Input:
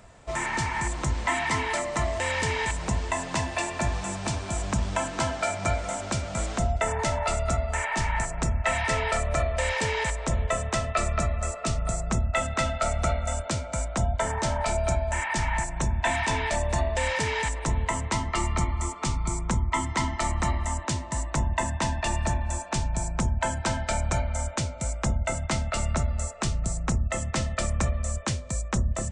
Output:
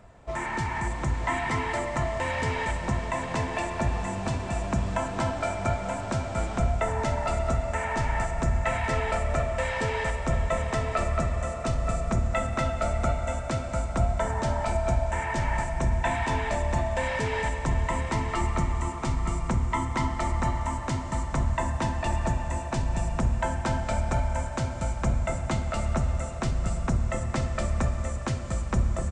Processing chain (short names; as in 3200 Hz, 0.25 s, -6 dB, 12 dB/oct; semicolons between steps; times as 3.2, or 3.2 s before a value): high shelf 2600 Hz -11 dB; echo 0.931 s -9 dB; on a send at -7 dB: reverb RT60 5.3 s, pre-delay 45 ms